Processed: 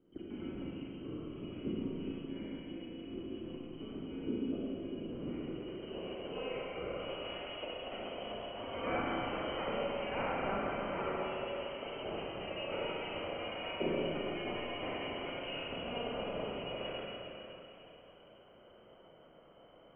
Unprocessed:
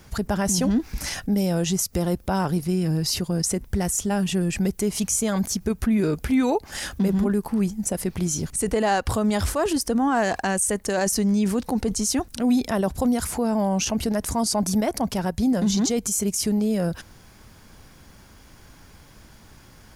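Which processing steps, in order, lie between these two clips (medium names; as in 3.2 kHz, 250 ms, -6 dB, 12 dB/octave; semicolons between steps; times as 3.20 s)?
comb filter that takes the minimum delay 1.1 ms; frequency inversion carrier 3.1 kHz; Schroeder reverb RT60 3.3 s, combs from 33 ms, DRR -7 dB; low-pass sweep 300 Hz -> 620 Hz, 5.22–7.43 s; trim -5 dB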